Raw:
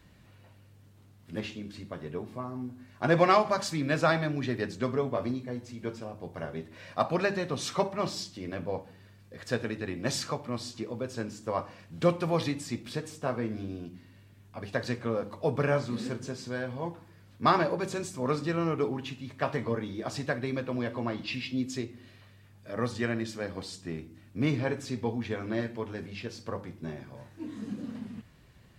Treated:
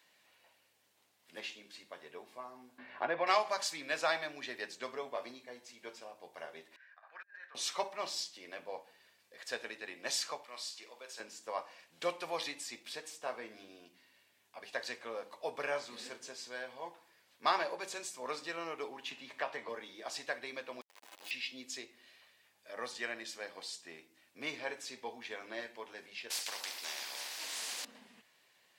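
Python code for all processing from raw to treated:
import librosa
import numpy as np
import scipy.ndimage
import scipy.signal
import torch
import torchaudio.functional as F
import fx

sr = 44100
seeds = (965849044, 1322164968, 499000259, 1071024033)

y = fx.chain(x, sr, fx.air_absorb(metres=460.0),
    fx.band_squash(depth_pct=70), at=(2.78, 3.27))
y = fx.chain(y, sr, fx.bandpass_q(hz=1600.0, q=9.2),
    fx.over_compress(threshold_db=-49.0, ratio=-0.5),
    fx.band_widen(depth_pct=70), at=(6.76, 7.55))
y = fx.chain(y, sr, fx.highpass(hz=1000.0, slope=6),
    fx.room_flutter(wall_m=8.3, rt60_s=0.28), at=(10.44, 11.2))
y = fx.chain(y, sr, fx.high_shelf(hz=4700.0, db=-8.0),
    fx.band_squash(depth_pct=70), at=(19.11, 19.69))
y = fx.chain(y, sr, fx.clip_1bit(),
    fx.stiff_resonator(f0_hz=92.0, decay_s=0.22, stiffness=0.03),
    fx.transformer_sat(knee_hz=890.0), at=(20.81, 21.31))
y = fx.chain(y, sr, fx.brickwall_highpass(low_hz=190.0),
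    fx.peak_eq(hz=4700.0, db=13.0, octaves=0.33),
    fx.spectral_comp(ratio=4.0), at=(26.3, 27.85))
y = scipy.signal.sosfilt(scipy.signal.butter(2, 830.0, 'highpass', fs=sr, output='sos'), y)
y = fx.peak_eq(y, sr, hz=1300.0, db=-7.0, octaves=0.62)
y = y * librosa.db_to_amplitude(-1.0)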